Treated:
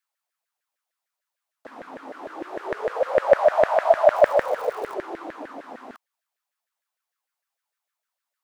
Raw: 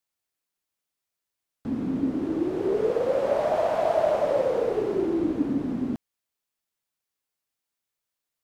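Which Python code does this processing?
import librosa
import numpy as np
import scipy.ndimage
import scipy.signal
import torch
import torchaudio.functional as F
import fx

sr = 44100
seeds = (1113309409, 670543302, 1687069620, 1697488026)

y = fx.filter_lfo_highpass(x, sr, shape='saw_down', hz=6.6, low_hz=550.0, high_hz=1800.0, q=5.1)
y = fx.dmg_crackle(y, sr, seeds[0], per_s=260.0, level_db=-33.0, at=(4.14, 4.93), fade=0.02)
y = F.gain(torch.from_numpy(y), -1.5).numpy()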